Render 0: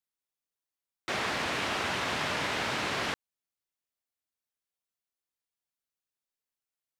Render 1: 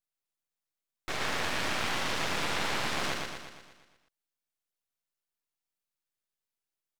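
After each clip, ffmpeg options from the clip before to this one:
-filter_complex "[0:a]asplit=2[a][b];[b]aecho=0:1:118|236|354|472|590|708|826|944:0.708|0.396|0.222|0.124|0.0696|0.039|0.0218|0.0122[c];[a][c]amix=inputs=2:normalize=0,aeval=exprs='max(val(0),0)':c=same,volume=1.5dB"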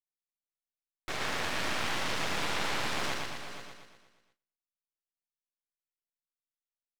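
-af "agate=range=-18dB:threshold=-60dB:ratio=16:detection=peak,aecho=1:1:462|479:0.15|0.211,volume=-1.5dB"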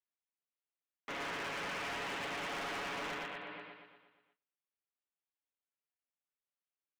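-af "aecho=1:1:7.4:0.64,highpass=f=310:t=q:w=0.5412,highpass=f=310:t=q:w=1.307,lowpass=f=3.3k:t=q:w=0.5176,lowpass=f=3.3k:t=q:w=0.7071,lowpass=f=3.3k:t=q:w=1.932,afreqshift=-110,volume=35dB,asoftclip=hard,volume=-35dB,volume=-2.5dB"

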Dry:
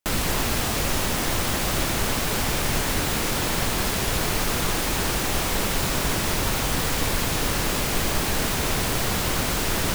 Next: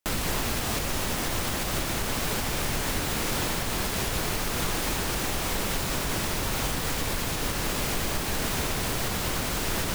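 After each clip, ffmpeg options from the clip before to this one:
-af "alimiter=limit=-17.5dB:level=0:latency=1:release=294"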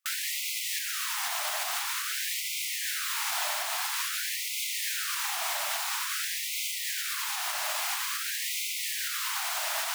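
-af "afftfilt=real='re*gte(b*sr/1024,580*pow(2000/580,0.5+0.5*sin(2*PI*0.49*pts/sr)))':imag='im*gte(b*sr/1024,580*pow(2000/580,0.5+0.5*sin(2*PI*0.49*pts/sr)))':win_size=1024:overlap=0.75"

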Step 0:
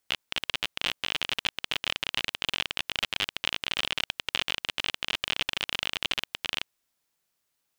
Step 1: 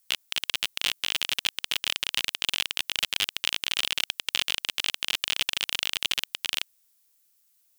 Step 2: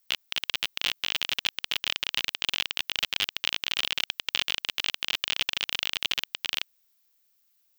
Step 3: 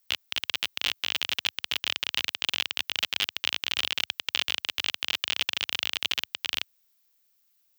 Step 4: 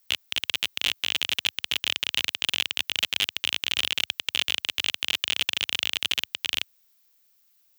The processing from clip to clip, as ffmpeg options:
-af "crystalizer=i=4.5:c=0,volume=-5dB"
-af "equalizer=f=9.7k:t=o:w=0.71:g=-13"
-af "highpass=f=78:w=0.5412,highpass=f=78:w=1.3066"
-af "asoftclip=type=hard:threshold=-15dB,volume=4.5dB"

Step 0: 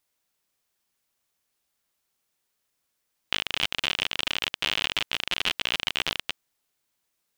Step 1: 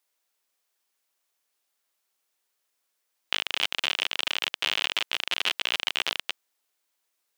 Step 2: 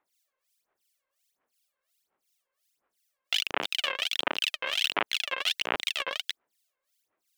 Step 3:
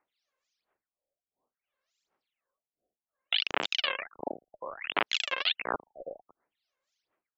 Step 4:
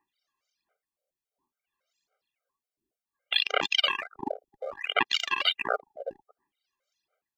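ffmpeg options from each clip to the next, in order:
-af "highpass=370"
-filter_complex "[0:a]aphaser=in_gain=1:out_gain=1:delay=1.9:decay=0.75:speed=1.4:type=sinusoidal,acrossover=split=2200[a][b];[a]aeval=exprs='val(0)*(1-1/2+1/2*cos(2*PI*2.8*n/s))':c=same[c];[b]aeval=exprs='val(0)*(1-1/2-1/2*cos(2*PI*2.8*n/s))':c=same[d];[c][d]amix=inputs=2:normalize=0"
-af "afftfilt=real='re*lt(b*sr/1024,750*pow(7700/750,0.5+0.5*sin(2*PI*0.62*pts/sr)))':imag='im*lt(b*sr/1024,750*pow(7700/750,0.5+0.5*sin(2*PI*0.62*pts/sr)))':win_size=1024:overlap=0.75"
-filter_complex "[0:a]asplit=2[a][b];[b]aeval=exprs='sgn(val(0))*max(abs(val(0))-0.0075,0)':c=same,volume=-8.5dB[c];[a][c]amix=inputs=2:normalize=0,afftfilt=real='re*gt(sin(2*PI*3.6*pts/sr)*(1-2*mod(floor(b*sr/1024/400),2)),0)':imag='im*gt(sin(2*PI*3.6*pts/sr)*(1-2*mod(floor(b*sr/1024/400),2)),0)':win_size=1024:overlap=0.75,volume=4.5dB"

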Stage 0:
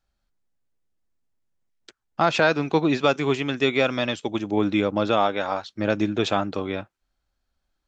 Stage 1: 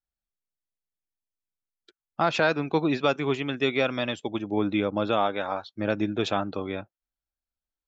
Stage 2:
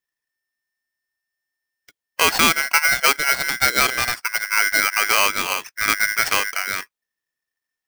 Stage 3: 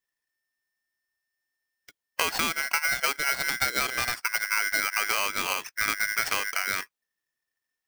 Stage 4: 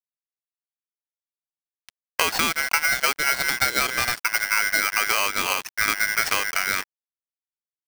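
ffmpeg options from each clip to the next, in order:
-af "afftdn=nr=15:nf=-43,volume=-3.5dB"
-af "aeval=exprs='val(0)*sgn(sin(2*PI*1800*n/s))':c=same,volume=6.5dB"
-af "acompressor=threshold=-22dB:ratio=6,volume=-1dB"
-af "acrusher=bits=5:mix=0:aa=0.5,volume=4.5dB"

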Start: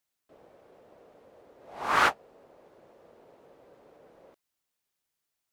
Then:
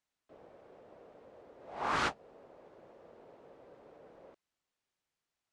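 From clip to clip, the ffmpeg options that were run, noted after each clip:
-filter_complex "[0:a]lowpass=f=9.2k:w=0.5412,lowpass=f=9.2k:w=1.3066,highshelf=f=5.2k:g=-9,acrossover=split=330|3500[a][b][c];[b]alimiter=limit=-24dB:level=0:latency=1:release=213[d];[a][d][c]amix=inputs=3:normalize=0"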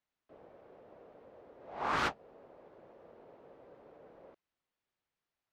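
-af "adynamicsmooth=sensitivity=8:basefreq=4.9k"

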